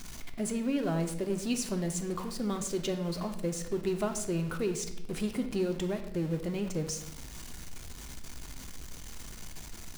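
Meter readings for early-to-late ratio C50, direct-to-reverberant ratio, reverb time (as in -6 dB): 10.0 dB, 6.0 dB, 0.85 s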